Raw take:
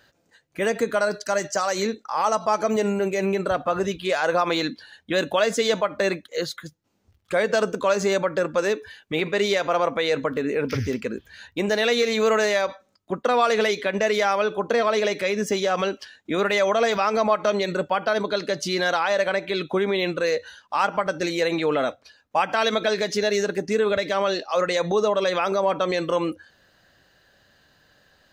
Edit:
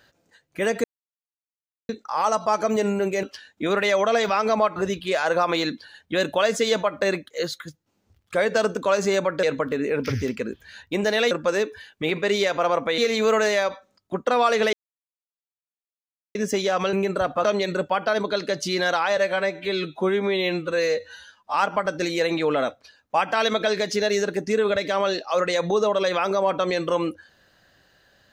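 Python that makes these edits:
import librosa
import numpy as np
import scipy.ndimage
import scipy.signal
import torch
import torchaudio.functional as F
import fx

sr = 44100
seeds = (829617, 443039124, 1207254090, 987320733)

y = fx.edit(x, sr, fx.silence(start_s=0.84, length_s=1.05),
    fx.swap(start_s=3.23, length_s=0.51, other_s=15.91, other_length_s=1.53),
    fx.move(start_s=8.41, length_s=1.67, to_s=11.96),
    fx.silence(start_s=13.71, length_s=1.62),
    fx.stretch_span(start_s=19.17, length_s=1.58, factor=1.5), tone=tone)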